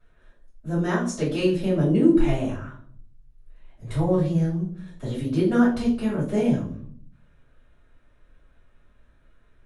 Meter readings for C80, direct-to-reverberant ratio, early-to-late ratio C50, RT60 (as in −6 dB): 10.5 dB, −10.5 dB, 6.5 dB, 0.55 s